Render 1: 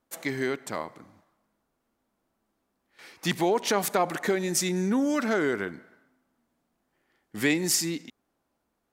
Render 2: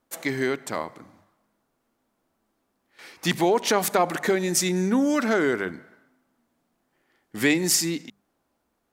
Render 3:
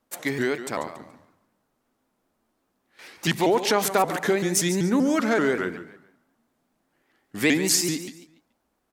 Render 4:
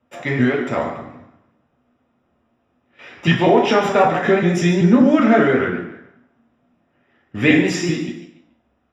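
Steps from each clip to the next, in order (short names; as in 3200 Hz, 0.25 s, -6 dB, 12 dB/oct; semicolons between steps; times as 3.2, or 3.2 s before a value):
notches 50/100/150/200 Hz; gain +3.5 dB
on a send: feedback echo 0.142 s, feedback 30%, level -12 dB; on the sum: shaped vibrato saw up 5.2 Hz, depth 160 cents
polynomial smoothing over 25 samples; reverb RT60 0.50 s, pre-delay 3 ms, DRR -1.5 dB; gain -1 dB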